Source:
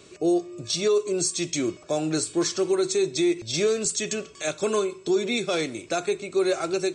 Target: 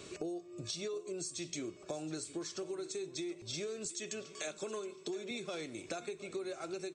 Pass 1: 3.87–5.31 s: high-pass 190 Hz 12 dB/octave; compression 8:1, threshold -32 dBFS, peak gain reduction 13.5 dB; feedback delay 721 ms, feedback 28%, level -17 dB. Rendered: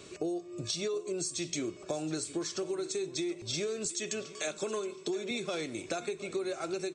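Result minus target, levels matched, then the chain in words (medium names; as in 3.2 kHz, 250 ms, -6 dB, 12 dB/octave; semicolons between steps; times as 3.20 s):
compression: peak gain reduction -6 dB
3.87–5.31 s: high-pass 190 Hz 12 dB/octave; compression 8:1, threshold -39 dBFS, peak gain reduction 20 dB; feedback delay 721 ms, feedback 28%, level -17 dB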